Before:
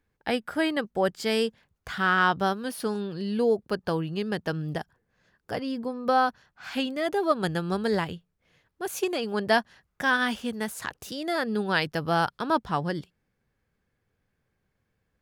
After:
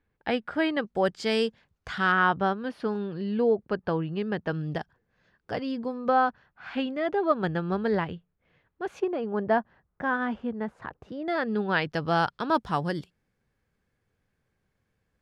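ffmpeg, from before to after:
-af "asetnsamples=n=441:p=0,asendcmd='0.87 lowpass f 6200;2.12 lowpass f 2500;4.52 lowpass f 4600;6.08 lowpass f 2400;9 lowpass f 1200;11.28 lowpass f 2800;11.9 lowpass f 5500;12.55 lowpass f 12000',lowpass=3500"

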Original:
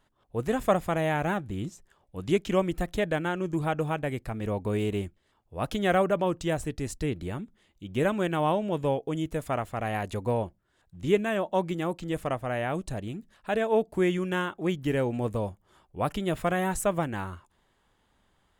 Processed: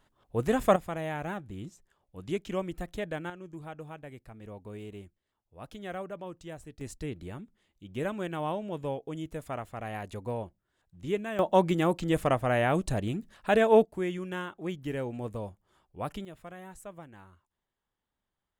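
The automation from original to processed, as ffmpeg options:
-af "asetnsamples=n=441:p=0,asendcmd='0.76 volume volume -7.5dB;3.3 volume volume -14.5dB;6.81 volume volume -7dB;11.39 volume volume 4dB;13.85 volume volume -7dB;16.25 volume volume -18.5dB',volume=1.12"

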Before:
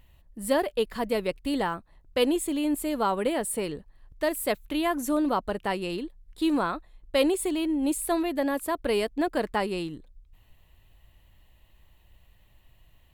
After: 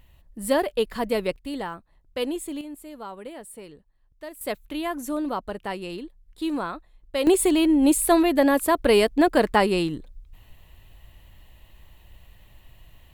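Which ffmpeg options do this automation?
-af "asetnsamples=n=441:p=0,asendcmd='1.36 volume volume -4dB;2.61 volume volume -12dB;4.41 volume volume -2.5dB;7.27 volume volume 8dB',volume=1.33"

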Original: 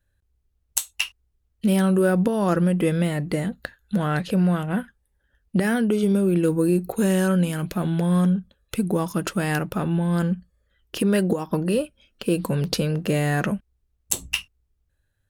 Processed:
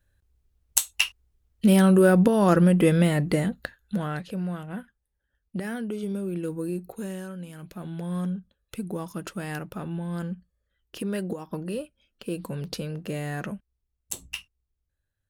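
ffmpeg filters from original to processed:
-af "volume=3.55,afade=t=out:st=3.22:d=1.04:silence=0.237137,afade=t=out:st=6.78:d=0.57:silence=0.398107,afade=t=in:st=7.35:d=0.9:silence=0.354813"

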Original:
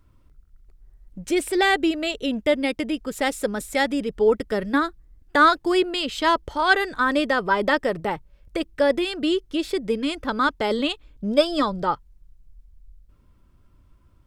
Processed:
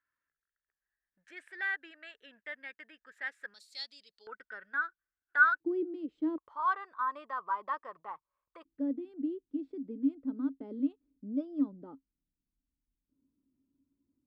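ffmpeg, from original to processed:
-af "asetnsamples=n=441:p=0,asendcmd='3.54 bandpass f 4400;4.27 bandpass f 1500;5.6 bandpass f 310;6.38 bandpass f 1100;8.65 bandpass f 270',bandpass=f=1700:t=q:w=13:csg=0"

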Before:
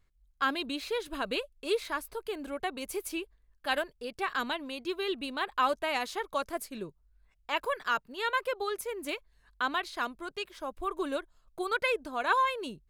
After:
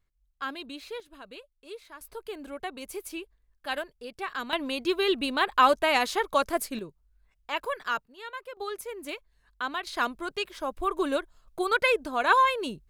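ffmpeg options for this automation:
-af "asetnsamples=n=441:p=0,asendcmd='1 volume volume -13dB;2.01 volume volume -2dB;4.53 volume volume 7.5dB;6.79 volume volume 0dB;8.05 volume volume -9.5dB;8.57 volume volume -1.5dB;9.87 volume volume 5.5dB',volume=0.531"

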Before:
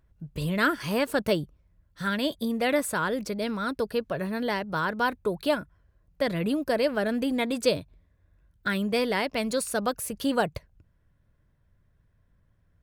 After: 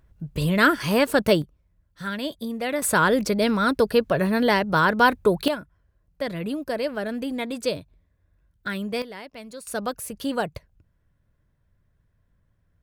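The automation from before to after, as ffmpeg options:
-af "asetnsamples=n=441:p=0,asendcmd='1.42 volume volume -2dB;2.82 volume volume 8.5dB;5.48 volume volume -2dB;9.02 volume volume -12dB;9.67 volume volume -1dB',volume=2"

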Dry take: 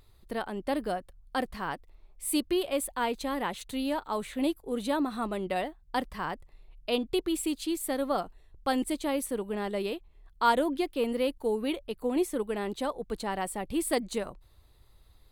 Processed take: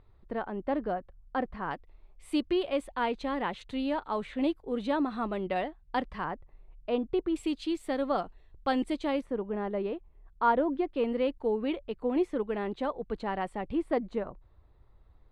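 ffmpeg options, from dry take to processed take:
-af "asetnsamples=n=441:p=0,asendcmd='1.71 lowpass f 3200;6.24 lowpass f 1600;7.36 lowpass f 3700;9.21 lowpass f 1500;10.94 lowpass f 2500;13.75 lowpass f 1500',lowpass=1700"

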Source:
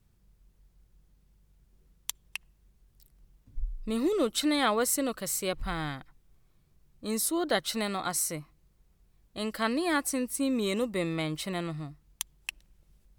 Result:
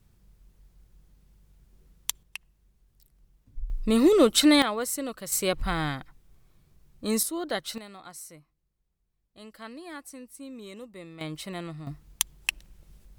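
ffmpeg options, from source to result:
-af "asetnsamples=n=441:p=0,asendcmd='2.23 volume volume -1.5dB;3.7 volume volume 8.5dB;4.62 volume volume -3dB;5.32 volume volume 5dB;7.23 volume volume -3dB;7.78 volume volume -13.5dB;11.21 volume volume -3dB;11.87 volume volume 9dB',volume=1.78"

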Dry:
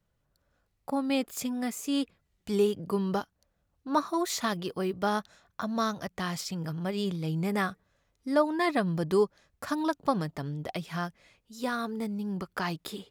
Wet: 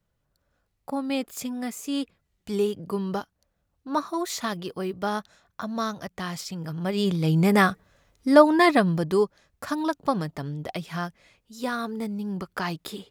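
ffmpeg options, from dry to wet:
-af "volume=3.16,afade=t=in:st=6.66:d=0.73:silence=0.334965,afade=t=out:st=8.56:d=0.53:silence=0.421697"

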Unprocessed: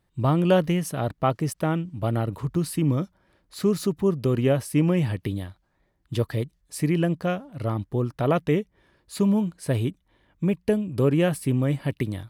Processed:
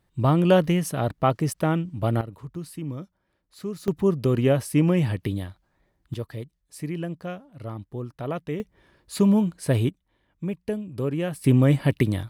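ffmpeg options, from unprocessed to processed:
-af "asetnsamples=n=441:p=0,asendcmd='2.21 volume volume -10dB;3.88 volume volume 1dB;6.14 volume volume -8dB;8.6 volume volume 2.5dB;9.89 volume volume -6dB;11.44 volume volume 5.5dB',volume=1.19"

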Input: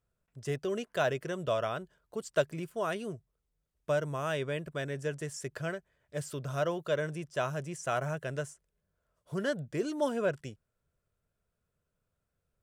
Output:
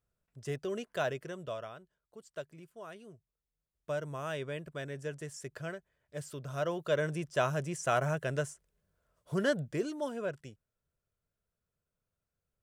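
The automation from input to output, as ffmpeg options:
-af "volume=4.73,afade=t=out:st=0.96:d=0.83:silence=0.281838,afade=t=in:st=3.09:d=1.07:silence=0.334965,afade=t=in:st=6.5:d=0.67:silence=0.446684,afade=t=out:st=9.58:d=0.42:silence=0.375837"

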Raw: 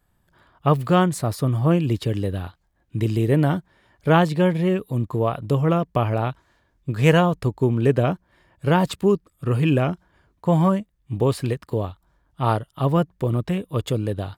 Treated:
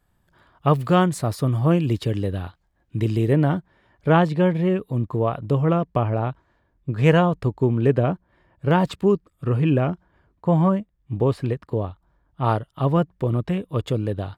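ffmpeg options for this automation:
-af "asetnsamples=n=441:p=0,asendcmd='2.11 lowpass f 5800;3.33 lowpass f 2500;5.99 lowpass f 1300;6.98 lowpass f 2600;7.99 lowpass f 1500;8.71 lowpass f 3300;9.5 lowpass f 1700;12.44 lowpass f 3400',lowpass=f=9800:p=1"

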